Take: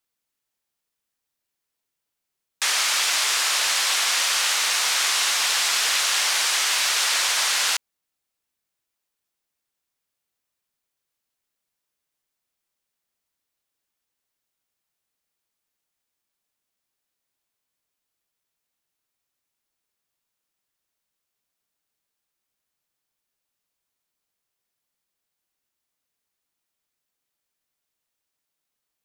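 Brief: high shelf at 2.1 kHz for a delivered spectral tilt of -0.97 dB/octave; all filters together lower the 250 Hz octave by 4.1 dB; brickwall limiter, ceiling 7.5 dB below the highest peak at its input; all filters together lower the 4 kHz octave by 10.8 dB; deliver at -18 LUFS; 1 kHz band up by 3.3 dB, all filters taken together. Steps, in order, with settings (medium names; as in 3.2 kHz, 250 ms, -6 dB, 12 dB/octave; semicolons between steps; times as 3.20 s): peaking EQ 250 Hz -6.5 dB; peaking EQ 1 kHz +7 dB; treble shelf 2.1 kHz -8.5 dB; peaking EQ 4 kHz -6 dB; trim +11.5 dB; peak limiter -10 dBFS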